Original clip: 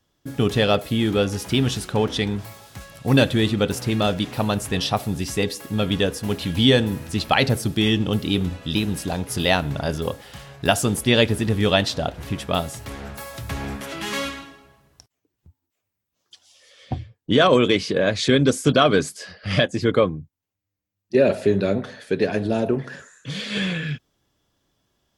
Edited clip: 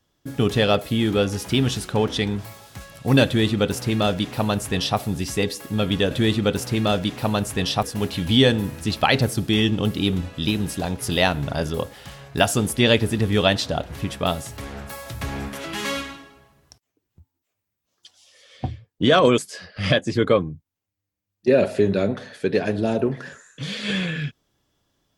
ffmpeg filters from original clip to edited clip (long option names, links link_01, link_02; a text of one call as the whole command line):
ffmpeg -i in.wav -filter_complex "[0:a]asplit=4[link_01][link_02][link_03][link_04];[link_01]atrim=end=6.112[link_05];[link_02]atrim=start=3.258:end=4.982[link_06];[link_03]atrim=start=6.108:end=17.662[link_07];[link_04]atrim=start=19.048[link_08];[link_05][link_06]acrossfade=duration=0.004:curve1=hsin:curve2=hsin[link_09];[link_09][link_07]acrossfade=duration=0.004:curve1=hsin:curve2=hsin[link_10];[link_10][link_08]acrossfade=duration=0.004:curve1=hsin:curve2=hsin" out.wav